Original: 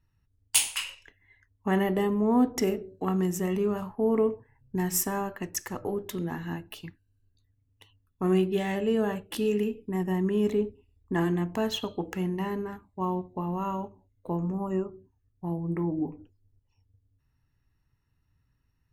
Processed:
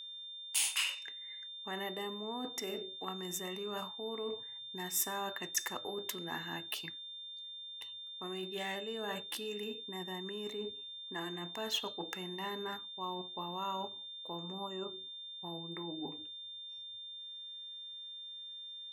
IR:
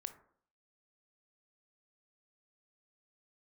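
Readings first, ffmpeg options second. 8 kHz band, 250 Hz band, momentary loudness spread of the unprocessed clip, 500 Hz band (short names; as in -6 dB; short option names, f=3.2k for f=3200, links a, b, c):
-6.0 dB, -17.5 dB, 11 LU, -13.5 dB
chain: -af "areverse,acompressor=threshold=-34dB:ratio=10,areverse,highpass=f=950:p=1,aeval=exprs='val(0)+0.00355*sin(2*PI*3600*n/s)':c=same,volume=4.5dB"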